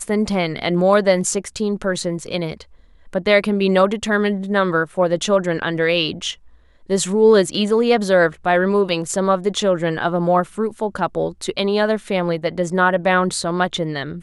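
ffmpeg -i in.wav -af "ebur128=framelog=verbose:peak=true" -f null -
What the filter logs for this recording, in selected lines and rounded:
Integrated loudness:
  I:         -18.6 LUFS
  Threshold: -28.8 LUFS
Loudness range:
  LRA:         2.9 LU
  Threshold: -38.8 LUFS
  LRA low:   -20.0 LUFS
  LRA high:  -17.1 LUFS
True peak:
  Peak:       -1.9 dBFS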